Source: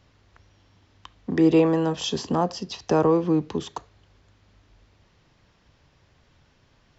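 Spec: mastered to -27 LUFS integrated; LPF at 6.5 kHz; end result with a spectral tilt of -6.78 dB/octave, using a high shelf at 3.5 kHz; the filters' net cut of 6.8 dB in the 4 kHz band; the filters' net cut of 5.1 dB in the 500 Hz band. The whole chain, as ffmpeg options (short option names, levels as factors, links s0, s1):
-af "lowpass=6500,equalizer=f=500:t=o:g=-6,highshelf=f=3500:g=-3.5,equalizer=f=4000:t=o:g=-6,volume=0.891"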